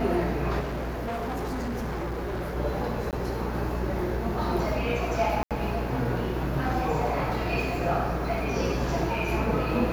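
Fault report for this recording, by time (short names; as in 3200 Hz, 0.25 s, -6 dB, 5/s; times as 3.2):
buzz 60 Hz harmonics 27 -32 dBFS
0.59–2.57 clipped -28 dBFS
3.11–3.13 gap 18 ms
5.43–5.51 gap 77 ms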